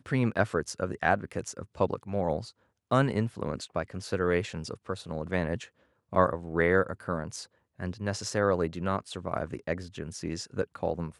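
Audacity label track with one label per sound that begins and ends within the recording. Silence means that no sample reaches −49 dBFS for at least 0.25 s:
2.910000	5.680000	sound
6.120000	7.460000	sound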